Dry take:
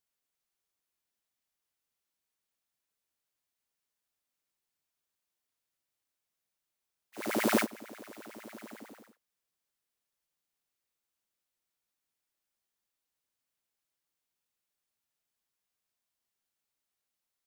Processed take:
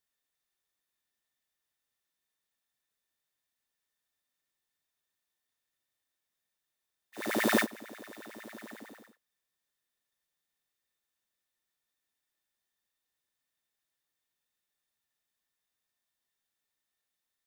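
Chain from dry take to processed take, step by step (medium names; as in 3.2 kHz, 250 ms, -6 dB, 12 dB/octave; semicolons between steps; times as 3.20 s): small resonant body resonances 1.8/3.6 kHz, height 13 dB, ringing for 40 ms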